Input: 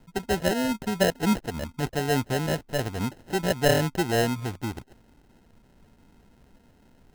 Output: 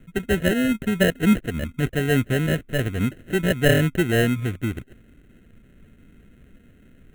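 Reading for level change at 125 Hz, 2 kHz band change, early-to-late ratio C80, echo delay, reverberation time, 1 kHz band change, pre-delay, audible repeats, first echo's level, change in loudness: +6.5 dB, +6.0 dB, no reverb, no echo, no reverb, -5.0 dB, no reverb, no echo, no echo, +4.5 dB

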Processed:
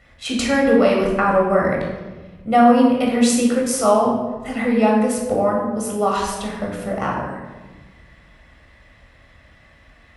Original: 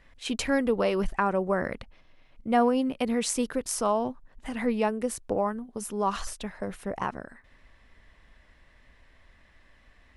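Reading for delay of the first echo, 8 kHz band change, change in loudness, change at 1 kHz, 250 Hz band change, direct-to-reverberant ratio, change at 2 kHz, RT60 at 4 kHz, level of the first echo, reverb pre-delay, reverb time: no echo, +7.5 dB, +10.0 dB, +10.5 dB, +11.5 dB, -2.0 dB, +9.5 dB, 0.80 s, no echo, 16 ms, 1.3 s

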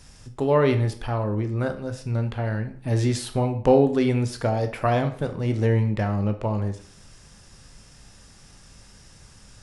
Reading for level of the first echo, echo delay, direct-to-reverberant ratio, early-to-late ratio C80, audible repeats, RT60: no echo, no echo, 7.0 dB, 16.0 dB, no echo, 0.55 s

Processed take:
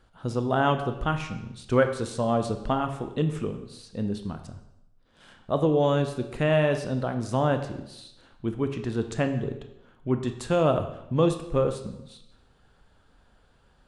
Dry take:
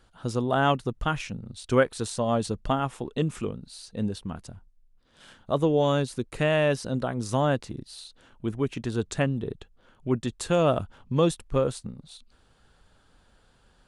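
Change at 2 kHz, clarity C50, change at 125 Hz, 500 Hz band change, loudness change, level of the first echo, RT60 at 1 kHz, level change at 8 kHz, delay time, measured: -1.0 dB, 9.5 dB, +1.0 dB, +0.5 dB, +0.5 dB, no echo, 0.85 s, -5.5 dB, no echo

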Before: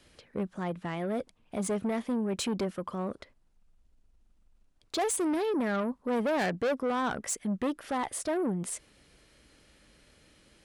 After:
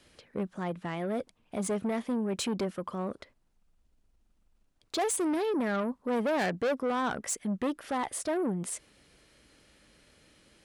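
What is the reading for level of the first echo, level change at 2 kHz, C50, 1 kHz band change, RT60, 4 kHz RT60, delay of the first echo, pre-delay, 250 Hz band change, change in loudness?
no echo, 0.0 dB, no reverb, 0.0 dB, no reverb, no reverb, no echo, no reverb, -0.5 dB, 0.0 dB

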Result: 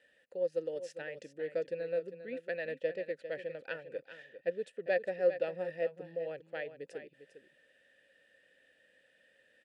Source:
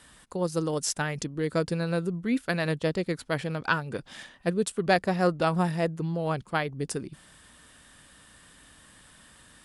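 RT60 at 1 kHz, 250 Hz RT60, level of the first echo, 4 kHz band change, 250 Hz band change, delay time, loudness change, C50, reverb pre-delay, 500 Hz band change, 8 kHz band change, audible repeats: no reverb, no reverb, -11.5 dB, -18.0 dB, -20.0 dB, 401 ms, -9.0 dB, no reverb, no reverb, -4.5 dB, under -25 dB, 1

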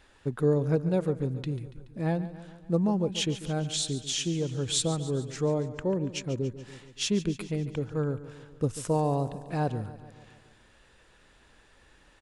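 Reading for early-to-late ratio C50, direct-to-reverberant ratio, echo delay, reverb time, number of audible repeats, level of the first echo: no reverb, no reverb, 142 ms, no reverb, 5, -14.5 dB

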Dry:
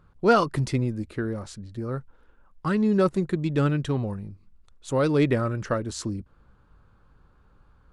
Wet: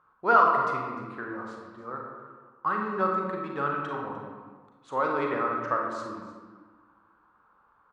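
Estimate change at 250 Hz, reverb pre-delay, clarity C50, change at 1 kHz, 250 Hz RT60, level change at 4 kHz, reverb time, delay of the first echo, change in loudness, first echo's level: -11.0 dB, 33 ms, 1.5 dB, +5.5 dB, 1.9 s, -11.0 dB, 1.4 s, 301 ms, -2.5 dB, -15.5 dB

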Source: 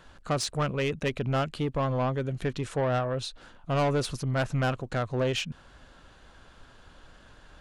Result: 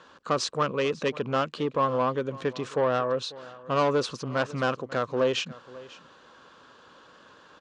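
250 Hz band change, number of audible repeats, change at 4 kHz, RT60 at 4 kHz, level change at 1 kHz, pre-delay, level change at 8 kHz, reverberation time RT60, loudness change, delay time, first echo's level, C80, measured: 0.0 dB, 1, +2.0 dB, no reverb, +4.0 dB, no reverb, -1.0 dB, no reverb, +1.5 dB, 544 ms, -19.5 dB, no reverb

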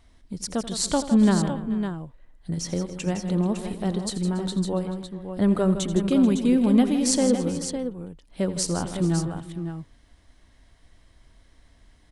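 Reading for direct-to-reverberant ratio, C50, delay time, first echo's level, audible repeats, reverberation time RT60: no reverb, no reverb, 84 ms, -14.5 dB, 5, no reverb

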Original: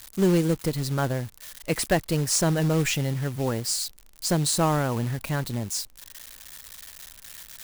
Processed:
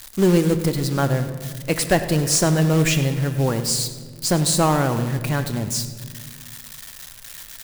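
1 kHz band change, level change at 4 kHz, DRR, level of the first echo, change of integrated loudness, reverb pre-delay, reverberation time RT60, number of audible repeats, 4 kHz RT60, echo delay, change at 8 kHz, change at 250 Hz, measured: +5.0 dB, +5.0 dB, 8.5 dB, -16.0 dB, +5.0 dB, 3 ms, 1.7 s, 2, 1.0 s, 101 ms, +5.0 dB, +5.5 dB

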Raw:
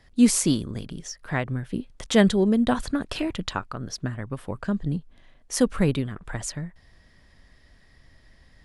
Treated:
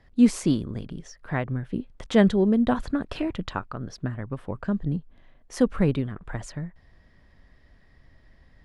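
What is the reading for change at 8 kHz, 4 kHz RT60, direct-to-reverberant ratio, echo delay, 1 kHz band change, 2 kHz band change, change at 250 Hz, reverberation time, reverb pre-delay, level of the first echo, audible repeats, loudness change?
-12.0 dB, no reverb, no reverb, no echo, -1.0 dB, -3.0 dB, 0.0 dB, no reverb, no reverb, no echo, no echo, -0.5 dB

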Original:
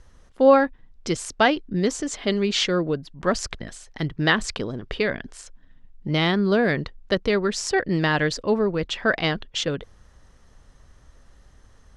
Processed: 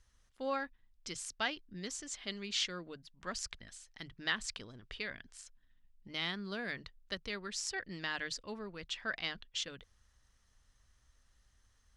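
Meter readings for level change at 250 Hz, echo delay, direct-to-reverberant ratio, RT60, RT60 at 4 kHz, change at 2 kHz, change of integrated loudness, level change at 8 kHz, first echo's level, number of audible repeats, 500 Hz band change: -22.5 dB, no echo, no reverb, no reverb, no reverb, -14.0 dB, -16.5 dB, -9.5 dB, no echo, no echo, -23.5 dB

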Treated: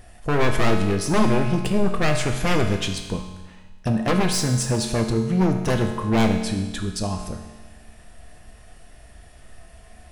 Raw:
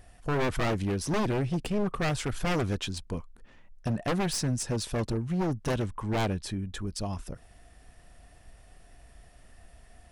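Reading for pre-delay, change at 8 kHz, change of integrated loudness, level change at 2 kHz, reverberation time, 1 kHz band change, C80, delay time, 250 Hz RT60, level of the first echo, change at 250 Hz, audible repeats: 5 ms, +8.0 dB, +8.0 dB, +8.0 dB, 1.3 s, +8.0 dB, 8.0 dB, no echo, 1.3 s, no echo, +9.0 dB, no echo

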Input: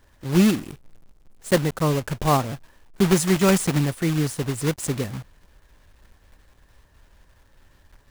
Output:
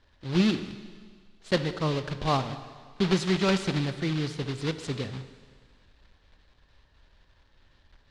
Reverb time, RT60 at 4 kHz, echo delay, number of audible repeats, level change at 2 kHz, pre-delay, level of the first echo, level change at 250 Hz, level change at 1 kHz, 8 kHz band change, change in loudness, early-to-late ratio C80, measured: 1.8 s, 1.8 s, no echo, no echo, -4.0 dB, 17 ms, no echo, -6.5 dB, -5.5 dB, -14.5 dB, -6.0 dB, 12.5 dB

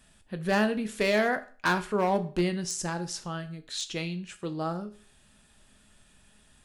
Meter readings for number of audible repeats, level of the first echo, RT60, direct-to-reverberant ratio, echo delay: no echo, no echo, 0.40 s, 8.5 dB, no echo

